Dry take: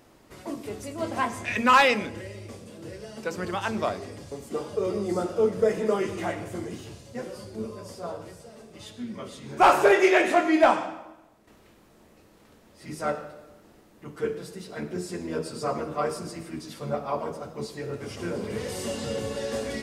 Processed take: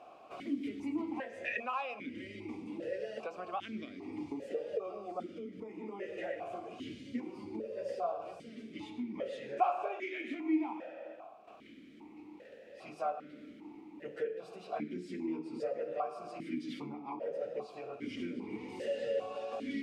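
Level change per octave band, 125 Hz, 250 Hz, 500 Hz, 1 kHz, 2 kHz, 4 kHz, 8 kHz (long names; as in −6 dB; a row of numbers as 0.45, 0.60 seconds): −17.0 dB, −8.0 dB, −12.0 dB, −13.0 dB, −16.0 dB, −16.0 dB, below −20 dB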